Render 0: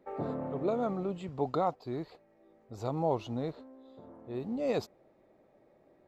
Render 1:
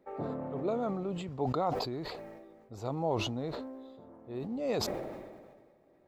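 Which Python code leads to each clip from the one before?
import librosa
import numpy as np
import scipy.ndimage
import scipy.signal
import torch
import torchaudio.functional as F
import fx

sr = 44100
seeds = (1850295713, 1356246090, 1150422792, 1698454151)

y = fx.sustainer(x, sr, db_per_s=35.0)
y = y * librosa.db_to_amplitude(-2.0)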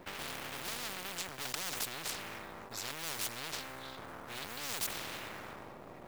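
y = np.maximum(x, 0.0)
y = fx.quant_float(y, sr, bits=4)
y = fx.spectral_comp(y, sr, ratio=10.0)
y = y * librosa.db_to_amplitude(4.0)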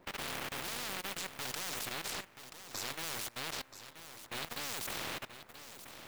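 y = fx.level_steps(x, sr, step_db=22)
y = y + 10.0 ** (-11.5 / 20.0) * np.pad(y, (int(980 * sr / 1000.0), 0))[:len(y)]
y = y * librosa.db_to_amplitude(4.0)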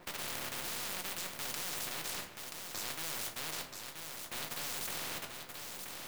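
y = fx.room_shoebox(x, sr, seeds[0], volume_m3=120.0, walls='furnished', distance_m=0.93)
y = fx.spectral_comp(y, sr, ratio=2.0)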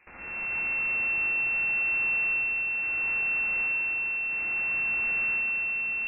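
y = fx.rev_freeverb(x, sr, rt60_s=2.7, hf_ratio=1.0, predelay_ms=10, drr_db=-7.5)
y = fx.freq_invert(y, sr, carrier_hz=2700)
y = y * librosa.db_to_amplitude(-5.5)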